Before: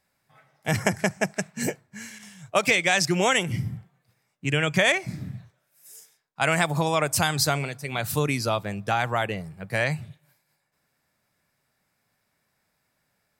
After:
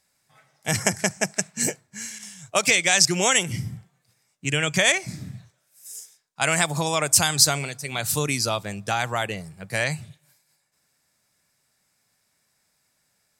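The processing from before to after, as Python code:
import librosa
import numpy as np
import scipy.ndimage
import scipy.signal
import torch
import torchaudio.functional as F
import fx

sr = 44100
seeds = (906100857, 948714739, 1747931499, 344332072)

y = fx.peak_eq(x, sr, hz=7300.0, db=12.0, octaves=1.8)
y = y * librosa.db_to_amplitude(-1.5)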